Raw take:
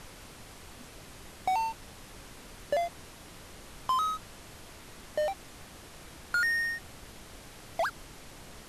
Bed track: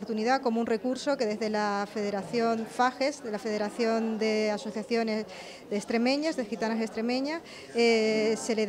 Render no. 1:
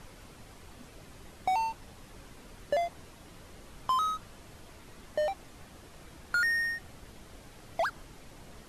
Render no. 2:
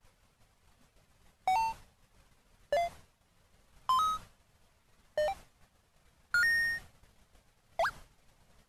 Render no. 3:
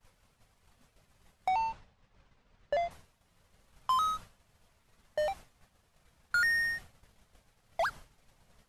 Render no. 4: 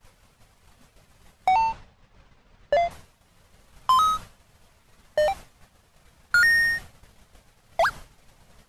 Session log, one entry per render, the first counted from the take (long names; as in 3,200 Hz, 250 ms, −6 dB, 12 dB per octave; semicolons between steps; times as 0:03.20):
broadband denoise 6 dB, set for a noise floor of −50 dBFS
downward expander −39 dBFS; parametric band 320 Hz −10 dB 0.82 octaves
0:01.48–0:02.91: high-frequency loss of the air 120 metres
level +9.5 dB